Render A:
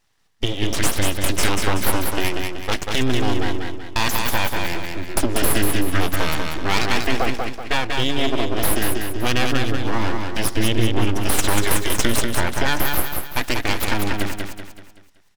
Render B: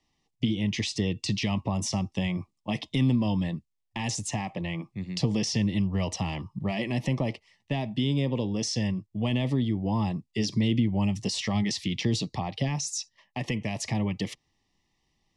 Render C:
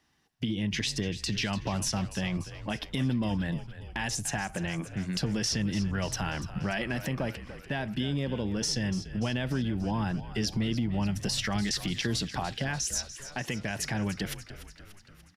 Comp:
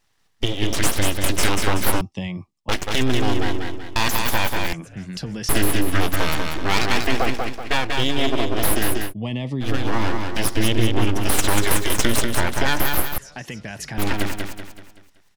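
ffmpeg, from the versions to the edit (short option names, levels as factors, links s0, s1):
-filter_complex "[1:a]asplit=2[s0][s1];[2:a]asplit=2[s2][s3];[0:a]asplit=5[s4][s5][s6][s7][s8];[s4]atrim=end=2.012[s9];[s0]atrim=start=2.008:end=2.692[s10];[s5]atrim=start=2.688:end=4.732[s11];[s2]atrim=start=4.728:end=5.492[s12];[s6]atrim=start=5.488:end=9.14[s13];[s1]atrim=start=9.04:end=9.7[s14];[s7]atrim=start=9.6:end=13.182[s15];[s3]atrim=start=13.178:end=13.982[s16];[s8]atrim=start=13.978[s17];[s9][s10]acrossfade=d=0.004:c1=hsin:c2=hsin[s18];[s18][s11]acrossfade=d=0.004:c1=hsin:c2=hsin[s19];[s19][s12]acrossfade=d=0.004:c1=hsin:c2=hsin[s20];[s20][s13]acrossfade=d=0.004:c1=hsin:c2=hsin[s21];[s21][s14]acrossfade=d=0.1:c1=tri:c2=tri[s22];[s22][s15]acrossfade=d=0.1:c1=tri:c2=tri[s23];[s23][s16]acrossfade=d=0.004:c1=hsin:c2=hsin[s24];[s24][s17]acrossfade=d=0.004:c1=hsin:c2=hsin"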